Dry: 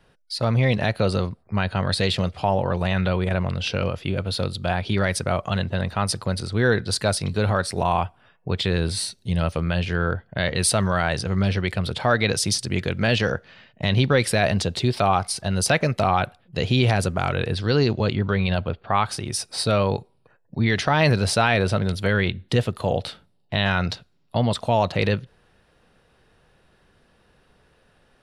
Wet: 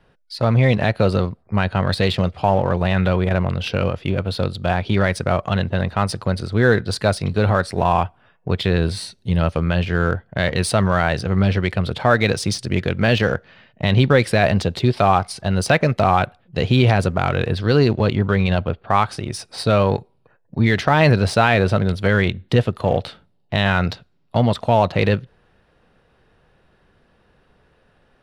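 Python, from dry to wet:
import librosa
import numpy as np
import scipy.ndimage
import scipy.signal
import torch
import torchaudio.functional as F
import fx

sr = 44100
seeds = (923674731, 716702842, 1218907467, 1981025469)

p1 = fx.high_shelf(x, sr, hz=4800.0, db=-11.5)
p2 = np.sign(p1) * np.maximum(np.abs(p1) - 10.0 ** (-30.0 / 20.0), 0.0)
p3 = p1 + (p2 * 10.0 ** (-7.0 / 20.0))
y = p3 * 10.0 ** (2.0 / 20.0)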